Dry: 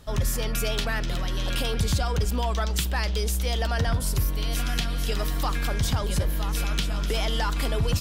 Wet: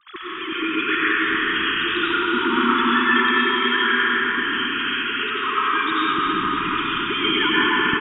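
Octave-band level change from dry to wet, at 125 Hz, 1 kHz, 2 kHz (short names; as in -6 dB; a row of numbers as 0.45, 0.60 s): -15.5, +12.5, +16.0 dB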